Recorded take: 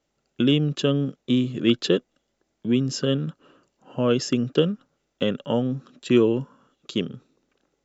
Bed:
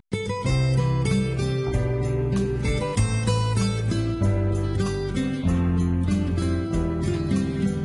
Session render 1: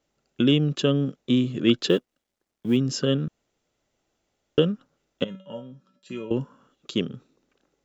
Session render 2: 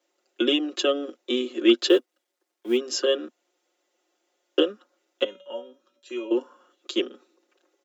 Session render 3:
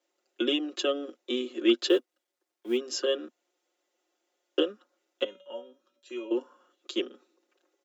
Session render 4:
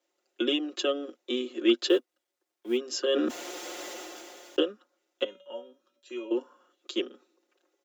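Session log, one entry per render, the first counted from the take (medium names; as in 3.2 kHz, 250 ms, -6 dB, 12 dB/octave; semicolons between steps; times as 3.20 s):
1.89–2.77 s: companding laws mixed up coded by A; 3.28–4.58 s: room tone; 5.24–6.31 s: feedback comb 190 Hz, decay 0.31 s, harmonics odd, mix 90%
steep high-pass 260 Hz 72 dB/octave; comb 5.6 ms, depth 92%
trim -5 dB
3.07–4.61 s: decay stretcher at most 20 dB/s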